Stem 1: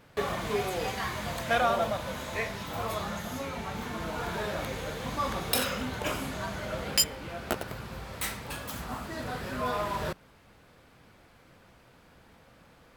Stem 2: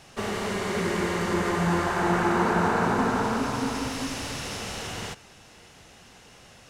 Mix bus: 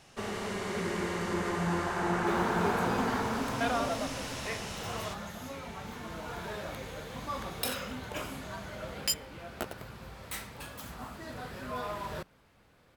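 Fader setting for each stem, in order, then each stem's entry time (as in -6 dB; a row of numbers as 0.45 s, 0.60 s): -6.0 dB, -6.5 dB; 2.10 s, 0.00 s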